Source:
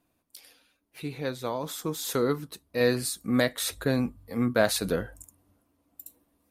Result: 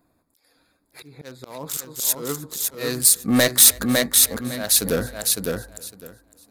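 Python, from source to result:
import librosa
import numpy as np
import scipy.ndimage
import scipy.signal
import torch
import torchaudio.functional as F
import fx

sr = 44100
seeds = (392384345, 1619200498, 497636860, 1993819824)

y = fx.wiener(x, sr, points=15)
y = fx.high_shelf(y, sr, hz=2400.0, db=11.0)
y = fx.auto_swell(y, sr, attack_ms=485.0)
y = fx.echo_feedback(y, sr, ms=556, feedback_pct=15, wet_db=-4)
y = 10.0 ** (-18.0 / 20.0) * np.tanh(y / 10.0 ** (-18.0 / 20.0))
y = fx.high_shelf(y, sr, hz=6400.0, db=9.0)
y = y + 10.0 ** (-24.0 / 20.0) * np.pad(y, (int(310 * sr / 1000.0), 0))[:len(y)]
y = y * librosa.db_to_amplitude(8.0)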